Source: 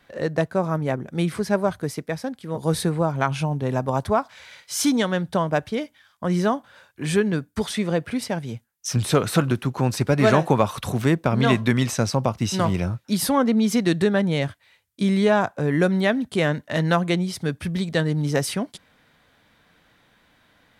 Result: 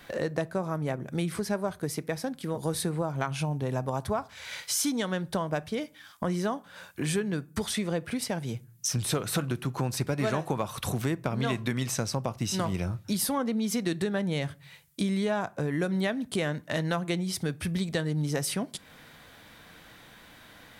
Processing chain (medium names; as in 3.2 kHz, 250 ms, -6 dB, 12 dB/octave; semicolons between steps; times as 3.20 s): treble shelf 6.5 kHz +7.5 dB; compression 3:1, threshold -39 dBFS, peak gain reduction 19.5 dB; on a send: reverberation RT60 0.35 s, pre-delay 3 ms, DRR 18.5 dB; on the sum: trim +7 dB